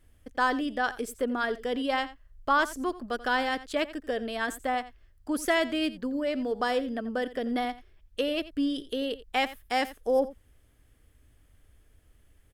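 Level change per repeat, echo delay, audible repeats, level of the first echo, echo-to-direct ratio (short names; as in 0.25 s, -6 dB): no steady repeat, 86 ms, 1, -16.5 dB, -16.5 dB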